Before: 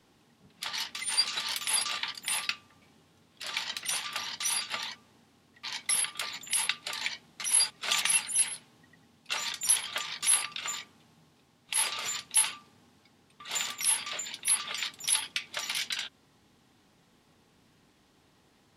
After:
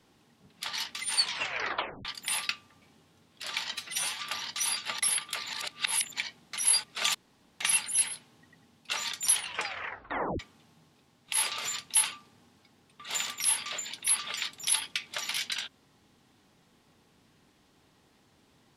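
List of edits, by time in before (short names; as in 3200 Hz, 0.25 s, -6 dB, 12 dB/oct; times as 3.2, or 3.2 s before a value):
1.15 tape stop 0.90 s
3.74–4.05 stretch 1.5×
4.84–5.86 cut
6.37–7.04 reverse
8.01 insert room tone 0.46 s
9.73 tape stop 1.07 s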